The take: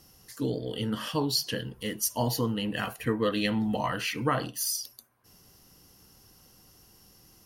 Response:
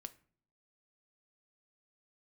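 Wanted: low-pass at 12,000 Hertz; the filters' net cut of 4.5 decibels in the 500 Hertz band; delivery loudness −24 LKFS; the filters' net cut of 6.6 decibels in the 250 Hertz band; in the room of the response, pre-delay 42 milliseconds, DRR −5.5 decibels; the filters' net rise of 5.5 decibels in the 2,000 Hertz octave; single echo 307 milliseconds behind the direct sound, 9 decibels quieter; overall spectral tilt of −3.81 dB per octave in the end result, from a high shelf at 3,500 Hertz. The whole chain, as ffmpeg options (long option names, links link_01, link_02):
-filter_complex "[0:a]lowpass=12000,equalizer=frequency=250:width_type=o:gain=-7.5,equalizer=frequency=500:width_type=o:gain=-3.5,equalizer=frequency=2000:width_type=o:gain=9,highshelf=frequency=3500:gain=-6,aecho=1:1:307:0.355,asplit=2[link_01][link_02];[1:a]atrim=start_sample=2205,adelay=42[link_03];[link_02][link_03]afir=irnorm=-1:irlink=0,volume=11dB[link_04];[link_01][link_04]amix=inputs=2:normalize=0"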